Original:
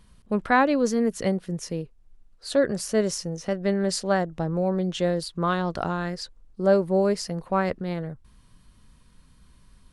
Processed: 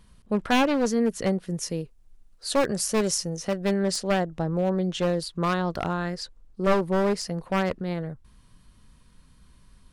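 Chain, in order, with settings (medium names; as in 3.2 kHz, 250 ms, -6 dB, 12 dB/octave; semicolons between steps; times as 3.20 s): one-sided wavefolder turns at -19.5 dBFS; 1.48–3.80 s: treble shelf 5.1 kHz +8 dB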